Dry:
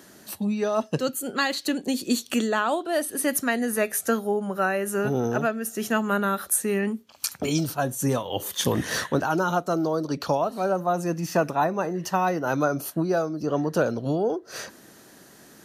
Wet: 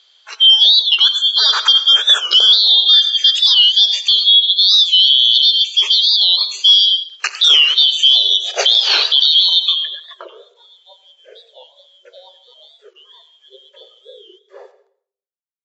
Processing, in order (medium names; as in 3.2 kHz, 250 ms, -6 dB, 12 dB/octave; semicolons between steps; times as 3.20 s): four frequency bands reordered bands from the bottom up 3412; spectral noise reduction 19 dB; 9.20–10.47 s: compression, threshold -24 dBFS, peak gain reduction 6 dB; low-pass sweep 4 kHz -> 490 Hz, 9.56–10.36 s; word length cut 12-bit, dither none; on a send at -12 dB: reverberation RT60 0.55 s, pre-delay 81 ms; on the sum: FFT band-pass 370–7700 Hz; loudness maximiser +12.5 dB; warped record 45 rpm, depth 160 cents; trim -1 dB